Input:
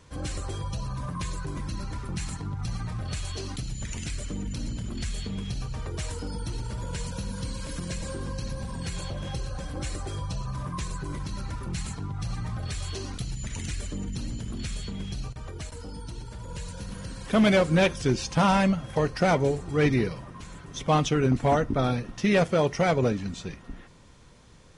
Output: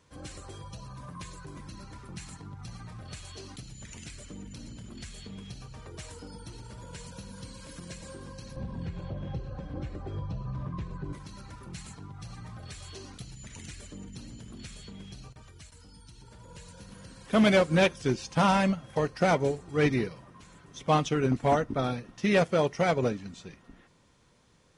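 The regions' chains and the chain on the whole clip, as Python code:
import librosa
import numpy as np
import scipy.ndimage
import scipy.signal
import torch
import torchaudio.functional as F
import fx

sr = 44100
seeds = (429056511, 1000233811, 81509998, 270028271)

y = fx.chain(x, sr, fx.lowpass(hz=3300.0, slope=12),
    fx.tilt_shelf(db=6.5, hz=720.0),
    fx.band_squash(depth_pct=70), at=(8.56, 11.13))
y = fx.chain(y, sr, fx.peak_eq(hz=520.0, db=-11.5, octaves=2.3),
    fx.band_squash(depth_pct=40), at=(15.42, 16.22))
y = fx.low_shelf(y, sr, hz=73.0, db=-10.5)
y = fx.upward_expand(y, sr, threshold_db=-34.0, expansion=1.5)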